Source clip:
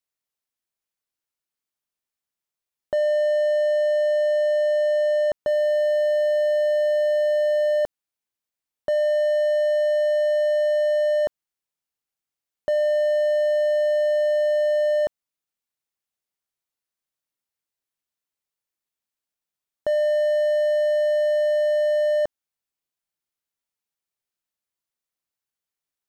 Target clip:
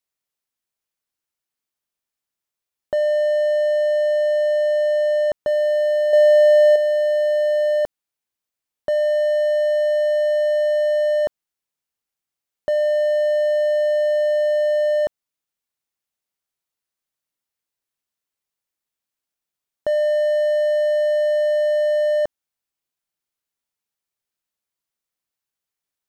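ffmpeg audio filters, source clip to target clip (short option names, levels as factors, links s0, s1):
-filter_complex "[0:a]asettb=1/sr,asplit=3[s0][s1][s2];[s0]atrim=end=6.134[s3];[s1]atrim=start=6.13:end=6.76,asetpts=PTS-STARTPTS,afade=t=in:d=0.004:c=qsin,afade=t=out:st=0.626:d=0.004:c=qsin,acontrast=72[s4];[s2]atrim=start=6.756[s5];[s3][s4]acrossfade=d=0.004:c1=hsin:c2=qsin[s6];[s6][s5]acrossfade=d=0.004:c1=qsin:c2=hsin,volume=1.26"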